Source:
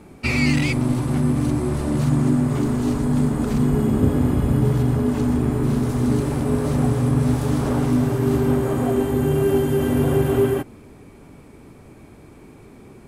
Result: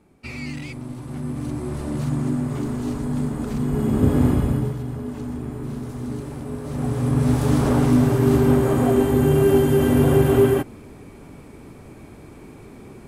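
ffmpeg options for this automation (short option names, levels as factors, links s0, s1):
-af "volume=5.31,afade=t=in:st=0.96:d=0.85:silence=0.398107,afade=t=in:st=3.65:d=0.6:silence=0.446684,afade=t=out:st=4.25:d=0.51:silence=0.251189,afade=t=in:st=6.65:d=0.88:silence=0.237137"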